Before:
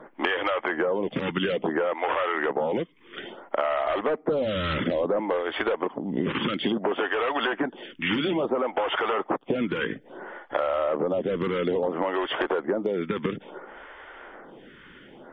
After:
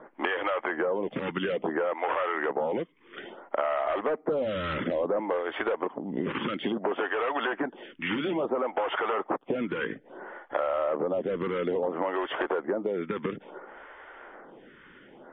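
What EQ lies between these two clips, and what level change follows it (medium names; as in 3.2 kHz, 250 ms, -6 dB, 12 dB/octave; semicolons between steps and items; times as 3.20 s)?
distance through air 360 m; bass shelf 240 Hz -8 dB; 0.0 dB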